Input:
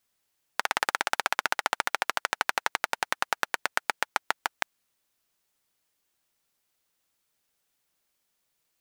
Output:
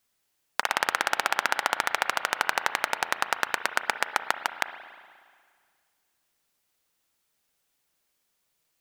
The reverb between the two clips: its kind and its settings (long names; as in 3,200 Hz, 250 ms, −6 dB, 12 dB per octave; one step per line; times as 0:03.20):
spring reverb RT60 1.9 s, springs 35/59 ms, chirp 75 ms, DRR 10 dB
level +1.5 dB